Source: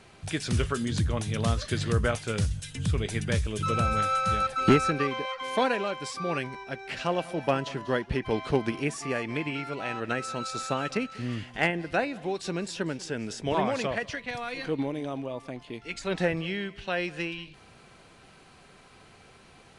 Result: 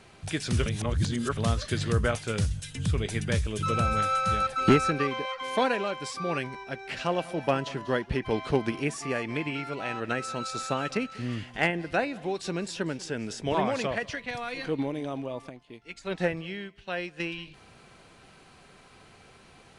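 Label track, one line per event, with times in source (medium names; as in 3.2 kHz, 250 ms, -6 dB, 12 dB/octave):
0.660000	1.370000	reverse
15.490000	17.200000	upward expansion, over -47 dBFS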